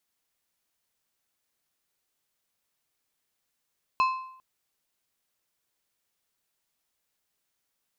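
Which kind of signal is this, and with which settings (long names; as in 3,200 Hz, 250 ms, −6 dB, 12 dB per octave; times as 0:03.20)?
struck metal plate, length 0.40 s, lowest mode 1,040 Hz, decay 0.69 s, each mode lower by 9 dB, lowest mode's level −18 dB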